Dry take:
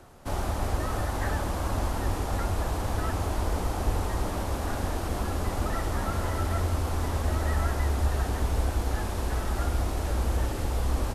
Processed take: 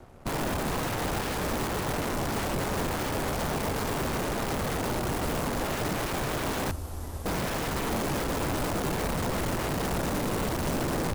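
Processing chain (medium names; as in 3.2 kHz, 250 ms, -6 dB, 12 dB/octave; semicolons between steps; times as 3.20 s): 6.71–7.26 s: pre-emphasis filter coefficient 0.8; integer overflow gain 27 dB; tilt shelf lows +5.5 dB, about 1.2 kHz; crossover distortion -52.5 dBFS; trim +1.5 dB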